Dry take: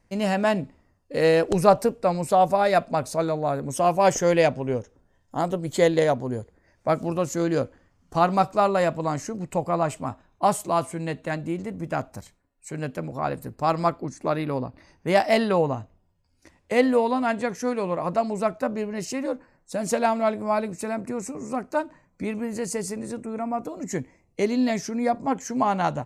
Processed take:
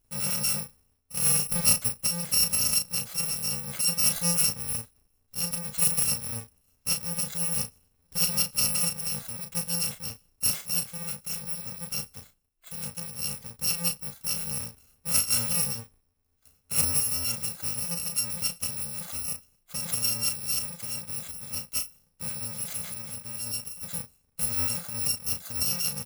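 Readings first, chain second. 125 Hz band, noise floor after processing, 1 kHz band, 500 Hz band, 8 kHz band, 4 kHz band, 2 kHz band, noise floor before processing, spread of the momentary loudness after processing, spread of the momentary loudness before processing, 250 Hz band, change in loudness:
−6.5 dB, −71 dBFS, −21.0 dB, −24.0 dB, +12.0 dB, +8.0 dB, −8.0 dB, −66 dBFS, 12 LU, 12 LU, −14.5 dB, −1.5 dB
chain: samples in bit-reversed order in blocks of 128 samples
double-tracking delay 35 ms −7.5 dB
level −6 dB

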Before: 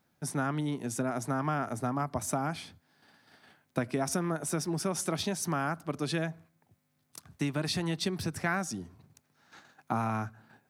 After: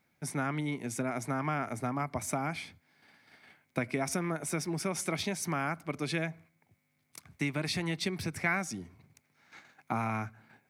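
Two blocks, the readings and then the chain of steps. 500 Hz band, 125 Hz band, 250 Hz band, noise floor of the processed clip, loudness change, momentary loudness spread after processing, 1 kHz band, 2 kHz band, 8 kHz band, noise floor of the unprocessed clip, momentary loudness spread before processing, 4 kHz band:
−2.0 dB, −2.0 dB, −2.0 dB, −75 dBFS, −1.0 dB, 9 LU, −1.5 dB, +2.0 dB, −2.0 dB, −74 dBFS, 9 LU, −1.5 dB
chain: parametric band 2,200 Hz +14 dB 0.27 octaves
level −2 dB

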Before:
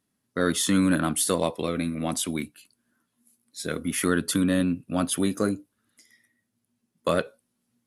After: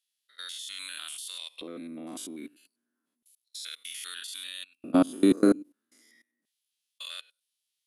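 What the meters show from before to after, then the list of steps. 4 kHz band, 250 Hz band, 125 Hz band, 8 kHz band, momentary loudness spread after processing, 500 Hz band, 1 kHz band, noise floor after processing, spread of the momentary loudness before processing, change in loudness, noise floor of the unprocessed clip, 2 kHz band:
−3.5 dB, −3.0 dB, −13.5 dB, −11.5 dB, 19 LU, −5.5 dB, −9.0 dB, −84 dBFS, 13 LU, −4.5 dB, −78 dBFS, −11.0 dB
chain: spectrum averaged block by block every 100 ms
auto-filter high-pass square 0.31 Hz 300–3,300 Hz
output level in coarse steps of 22 dB
level +4 dB

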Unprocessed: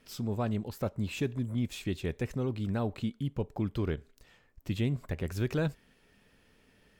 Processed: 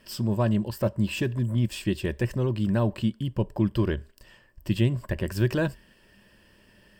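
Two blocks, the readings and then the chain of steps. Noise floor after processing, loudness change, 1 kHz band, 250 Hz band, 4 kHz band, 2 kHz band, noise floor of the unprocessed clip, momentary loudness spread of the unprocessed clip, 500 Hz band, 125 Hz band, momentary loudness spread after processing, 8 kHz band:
−59 dBFS, +7.0 dB, +5.0 dB, +7.0 dB, +7.0 dB, +7.0 dB, −66 dBFS, 4 LU, +6.0 dB, +7.5 dB, 5 LU, +5.5 dB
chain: EQ curve with evenly spaced ripples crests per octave 1.3, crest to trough 9 dB
level +5.5 dB

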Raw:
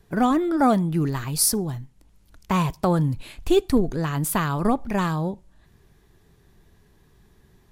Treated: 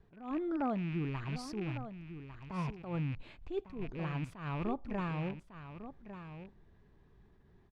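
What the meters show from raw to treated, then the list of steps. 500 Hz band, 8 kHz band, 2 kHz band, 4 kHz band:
−16.0 dB, below −30 dB, −13.0 dB, −19.5 dB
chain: loose part that buzzes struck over −29 dBFS, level −21 dBFS
high-shelf EQ 3,100 Hz −9.5 dB
downward compressor 2 to 1, threshold −31 dBFS, peak gain reduction 9.5 dB
high-frequency loss of the air 140 metres
single-tap delay 1,151 ms −11.5 dB
level that may rise only so fast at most 120 dB per second
level −6 dB

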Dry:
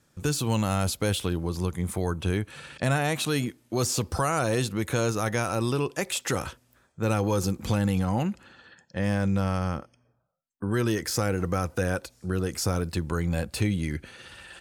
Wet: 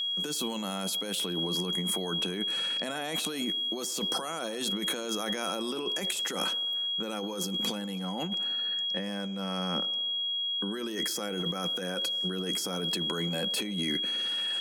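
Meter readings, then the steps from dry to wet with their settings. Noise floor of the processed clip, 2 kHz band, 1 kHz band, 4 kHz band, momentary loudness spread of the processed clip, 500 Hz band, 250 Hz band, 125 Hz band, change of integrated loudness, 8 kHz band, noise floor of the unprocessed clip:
−35 dBFS, −5.5 dB, −6.5 dB, +11.0 dB, 4 LU, −6.5 dB, −6.0 dB, −14.0 dB, −2.5 dB, −3.0 dB, −67 dBFS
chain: elliptic high-pass filter 180 Hz, stop band 40 dB
high-shelf EQ 6,200 Hz +4.5 dB
steady tone 3,300 Hz −32 dBFS
compressor whose output falls as the input rises −32 dBFS, ratio −1
on a send: delay with a band-pass on its return 104 ms, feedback 60%, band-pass 560 Hz, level −17 dB

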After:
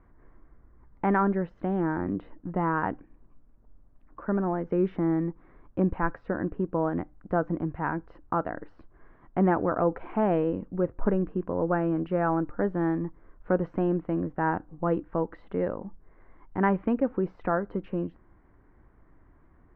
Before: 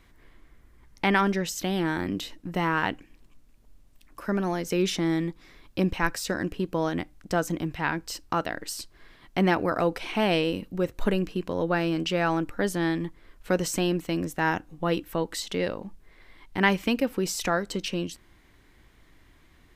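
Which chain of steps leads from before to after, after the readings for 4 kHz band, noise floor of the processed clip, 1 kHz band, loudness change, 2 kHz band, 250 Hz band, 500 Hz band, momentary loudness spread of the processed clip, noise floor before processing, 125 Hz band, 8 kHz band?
below −25 dB, −59 dBFS, −0.5 dB, −1.0 dB, −7.5 dB, 0.0 dB, 0.0 dB, 9 LU, −58 dBFS, 0.0 dB, below −40 dB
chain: low-pass filter 1,400 Hz 24 dB per octave

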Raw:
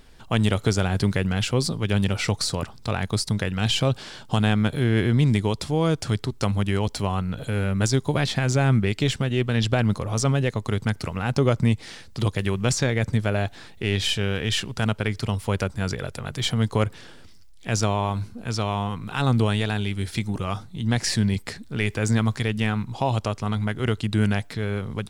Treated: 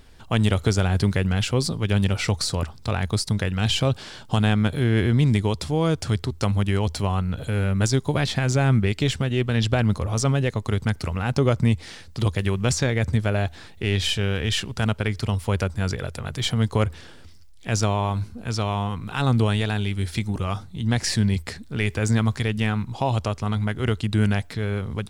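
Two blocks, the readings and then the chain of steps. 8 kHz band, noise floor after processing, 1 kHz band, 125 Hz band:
0.0 dB, −44 dBFS, 0.0 dB, +1.5 dB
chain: parametric band 80 Hz +10.5 dB 0.32 octaves

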